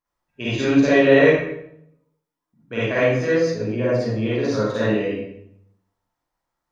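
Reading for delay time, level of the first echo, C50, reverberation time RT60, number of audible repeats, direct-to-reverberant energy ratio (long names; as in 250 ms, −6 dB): no echo audible, no echo audible, −5.0 dB, 0.70 s, no echo audible, −9.5 dB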